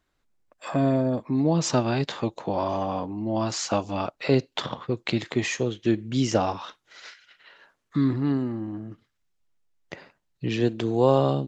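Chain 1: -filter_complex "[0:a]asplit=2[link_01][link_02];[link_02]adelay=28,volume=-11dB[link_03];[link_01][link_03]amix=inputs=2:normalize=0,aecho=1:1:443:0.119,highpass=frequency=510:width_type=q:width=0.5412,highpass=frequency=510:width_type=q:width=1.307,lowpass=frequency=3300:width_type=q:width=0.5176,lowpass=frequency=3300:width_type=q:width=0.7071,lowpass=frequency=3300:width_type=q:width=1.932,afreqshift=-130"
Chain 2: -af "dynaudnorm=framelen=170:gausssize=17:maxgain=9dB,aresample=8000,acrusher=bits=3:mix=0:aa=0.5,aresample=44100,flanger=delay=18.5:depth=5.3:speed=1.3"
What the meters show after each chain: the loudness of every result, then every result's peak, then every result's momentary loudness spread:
−31.0, −23.5 LKFS; −11.5, −3.5 dBFS; 18, 9 LU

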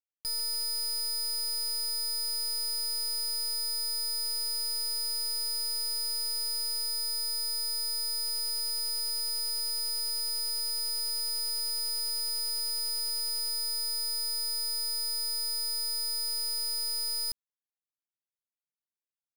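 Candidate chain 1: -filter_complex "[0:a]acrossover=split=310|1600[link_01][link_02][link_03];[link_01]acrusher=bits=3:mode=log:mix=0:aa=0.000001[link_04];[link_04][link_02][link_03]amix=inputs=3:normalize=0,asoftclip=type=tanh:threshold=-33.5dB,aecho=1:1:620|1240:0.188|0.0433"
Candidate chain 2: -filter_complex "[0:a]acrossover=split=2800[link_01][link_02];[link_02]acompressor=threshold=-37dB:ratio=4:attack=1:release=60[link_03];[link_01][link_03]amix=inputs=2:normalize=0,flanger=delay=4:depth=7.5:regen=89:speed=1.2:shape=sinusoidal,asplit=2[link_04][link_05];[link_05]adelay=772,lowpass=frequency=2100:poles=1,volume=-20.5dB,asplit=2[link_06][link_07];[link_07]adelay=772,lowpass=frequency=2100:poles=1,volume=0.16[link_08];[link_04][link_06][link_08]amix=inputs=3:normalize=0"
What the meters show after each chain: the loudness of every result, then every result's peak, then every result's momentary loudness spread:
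−33.5, −41.0 LKFS; −32.0, −31.0 dBFS; 0, 0 LU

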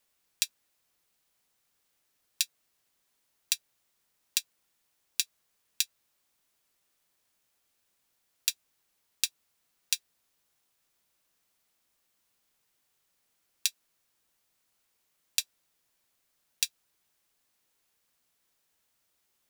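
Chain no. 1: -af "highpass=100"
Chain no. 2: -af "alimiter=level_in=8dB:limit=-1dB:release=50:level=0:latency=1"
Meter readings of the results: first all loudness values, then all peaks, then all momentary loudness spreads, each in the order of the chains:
−33.0, −31.5 LKFS; −2.0, −1.0 dBFS; 0, 0 LU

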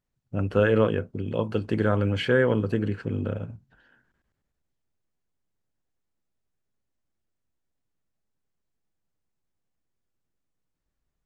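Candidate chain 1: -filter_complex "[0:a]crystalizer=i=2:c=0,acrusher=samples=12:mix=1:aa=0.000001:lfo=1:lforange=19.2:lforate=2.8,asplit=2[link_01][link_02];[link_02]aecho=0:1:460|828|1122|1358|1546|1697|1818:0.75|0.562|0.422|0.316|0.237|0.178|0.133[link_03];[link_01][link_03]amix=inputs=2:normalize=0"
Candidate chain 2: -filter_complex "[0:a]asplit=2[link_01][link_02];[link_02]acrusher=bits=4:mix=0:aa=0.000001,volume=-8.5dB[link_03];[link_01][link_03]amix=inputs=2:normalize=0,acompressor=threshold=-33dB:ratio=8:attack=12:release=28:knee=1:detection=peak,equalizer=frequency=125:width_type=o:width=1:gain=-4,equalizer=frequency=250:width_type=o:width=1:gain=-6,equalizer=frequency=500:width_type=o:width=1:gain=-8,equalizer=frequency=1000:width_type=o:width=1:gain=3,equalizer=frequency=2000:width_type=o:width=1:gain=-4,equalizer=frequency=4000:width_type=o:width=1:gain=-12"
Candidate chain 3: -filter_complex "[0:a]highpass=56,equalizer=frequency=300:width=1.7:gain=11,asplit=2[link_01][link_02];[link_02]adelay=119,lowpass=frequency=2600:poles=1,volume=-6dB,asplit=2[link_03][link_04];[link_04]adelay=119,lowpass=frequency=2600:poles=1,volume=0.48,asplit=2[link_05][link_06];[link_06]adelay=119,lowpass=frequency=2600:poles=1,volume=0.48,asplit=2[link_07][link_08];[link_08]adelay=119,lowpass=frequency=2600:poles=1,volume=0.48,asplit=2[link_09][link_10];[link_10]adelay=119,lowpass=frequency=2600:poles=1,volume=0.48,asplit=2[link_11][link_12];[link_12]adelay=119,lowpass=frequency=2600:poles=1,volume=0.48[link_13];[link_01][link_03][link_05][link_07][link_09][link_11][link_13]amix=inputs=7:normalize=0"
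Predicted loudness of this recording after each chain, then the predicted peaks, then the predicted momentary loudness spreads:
−22.5, −39.0, −20.0 LKFS; −4.5, −20.0, −2.0 dBFS; 15, 5, 12 LU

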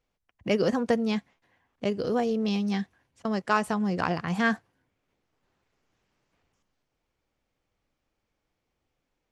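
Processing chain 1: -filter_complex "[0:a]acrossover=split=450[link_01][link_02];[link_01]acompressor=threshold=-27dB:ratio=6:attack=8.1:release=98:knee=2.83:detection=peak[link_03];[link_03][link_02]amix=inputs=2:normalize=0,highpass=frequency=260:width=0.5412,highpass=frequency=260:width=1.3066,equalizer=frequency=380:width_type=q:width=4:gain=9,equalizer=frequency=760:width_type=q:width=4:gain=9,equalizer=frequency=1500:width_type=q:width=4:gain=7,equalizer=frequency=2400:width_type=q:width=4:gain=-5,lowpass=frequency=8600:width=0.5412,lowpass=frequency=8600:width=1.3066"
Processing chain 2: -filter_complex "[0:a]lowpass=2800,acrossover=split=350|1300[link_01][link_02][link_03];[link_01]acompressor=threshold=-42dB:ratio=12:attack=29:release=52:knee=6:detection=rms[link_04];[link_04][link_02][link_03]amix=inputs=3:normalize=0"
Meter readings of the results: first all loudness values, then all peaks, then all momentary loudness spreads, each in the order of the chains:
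−26.0, −31.0 LKFS; −6.5, −10.5 dBFS; 12, 12 LU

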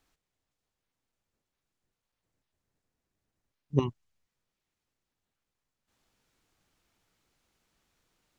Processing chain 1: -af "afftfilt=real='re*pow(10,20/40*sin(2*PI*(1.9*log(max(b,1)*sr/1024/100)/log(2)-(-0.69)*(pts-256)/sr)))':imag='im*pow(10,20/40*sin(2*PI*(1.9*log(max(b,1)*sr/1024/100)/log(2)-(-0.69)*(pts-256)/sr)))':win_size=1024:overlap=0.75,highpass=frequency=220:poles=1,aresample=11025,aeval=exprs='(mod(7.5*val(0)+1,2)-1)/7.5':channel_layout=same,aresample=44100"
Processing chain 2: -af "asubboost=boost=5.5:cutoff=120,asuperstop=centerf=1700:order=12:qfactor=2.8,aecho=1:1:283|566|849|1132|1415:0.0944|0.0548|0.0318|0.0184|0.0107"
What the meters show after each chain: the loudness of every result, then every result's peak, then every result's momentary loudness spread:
−30.5, −29.0 LKFS; −15.0, −10.5 dBFS; 3, 20 LU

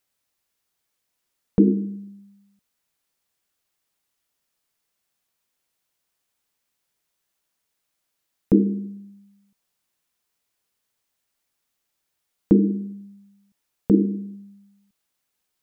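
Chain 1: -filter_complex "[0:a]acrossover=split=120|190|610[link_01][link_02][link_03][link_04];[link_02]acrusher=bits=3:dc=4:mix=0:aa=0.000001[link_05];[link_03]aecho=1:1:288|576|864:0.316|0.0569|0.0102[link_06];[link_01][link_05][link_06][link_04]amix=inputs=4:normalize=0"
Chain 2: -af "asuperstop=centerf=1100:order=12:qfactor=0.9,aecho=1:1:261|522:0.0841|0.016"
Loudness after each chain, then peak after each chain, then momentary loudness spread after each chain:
−23.5, −22.0 LKFS; −4.0, −4.0 dBFS; 14, 18 LU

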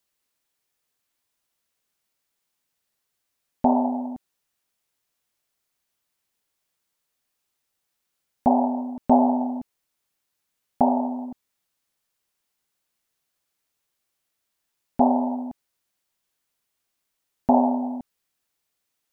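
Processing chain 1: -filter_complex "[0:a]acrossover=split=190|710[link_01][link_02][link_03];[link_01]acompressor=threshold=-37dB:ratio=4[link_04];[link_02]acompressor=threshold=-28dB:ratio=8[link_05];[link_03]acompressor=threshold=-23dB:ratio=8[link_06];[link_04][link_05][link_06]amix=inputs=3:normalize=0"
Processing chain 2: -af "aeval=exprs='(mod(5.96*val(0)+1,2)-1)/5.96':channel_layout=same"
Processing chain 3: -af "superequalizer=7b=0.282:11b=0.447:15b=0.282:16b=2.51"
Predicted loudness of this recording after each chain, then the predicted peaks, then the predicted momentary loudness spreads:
−29.0, −24.0, −23.0 LKFS; −8.5, −15.5, −4.5 dBFS; 14, 14, 16 LU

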